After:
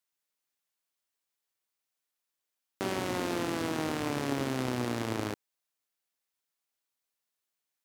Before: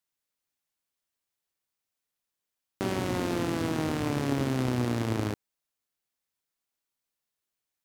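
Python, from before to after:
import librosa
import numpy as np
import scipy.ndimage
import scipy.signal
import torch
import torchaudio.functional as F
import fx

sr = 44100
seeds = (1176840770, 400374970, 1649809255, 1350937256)

y = fx.low_shelf(x, sr, hz=210.0, db=-10.5)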